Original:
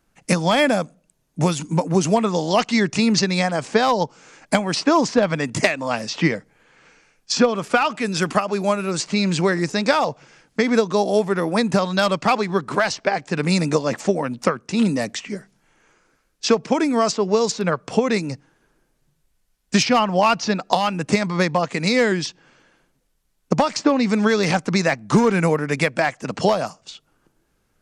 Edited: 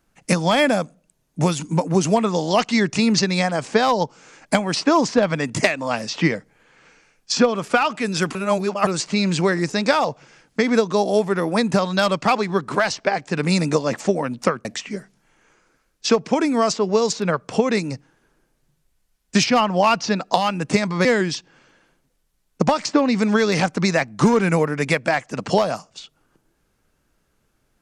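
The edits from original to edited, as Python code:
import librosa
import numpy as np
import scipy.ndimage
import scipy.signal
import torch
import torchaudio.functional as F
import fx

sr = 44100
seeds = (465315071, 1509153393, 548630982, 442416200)

y = fx.edit(x, sr, fx.reverse_span(start_s=8.35, length_s=0.52),
    fx.cut(start_s=14.65, length_s=0.39),
    fx.cut(start_s=21.44, length_s=0.52), tone=tone)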